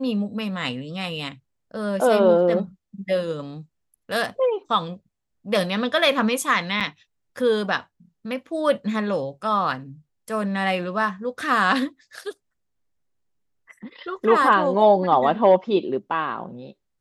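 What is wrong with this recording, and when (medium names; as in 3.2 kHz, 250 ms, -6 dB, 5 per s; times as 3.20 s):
6.80–6.81 s: dropout 6.9 ms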